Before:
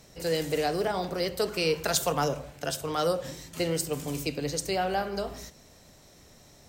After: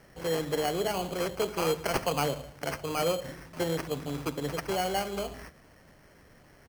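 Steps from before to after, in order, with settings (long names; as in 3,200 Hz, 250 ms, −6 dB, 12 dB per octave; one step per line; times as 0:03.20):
downsampling to 16,000 Hz
decimation without filtering 12×
level −1.5 dB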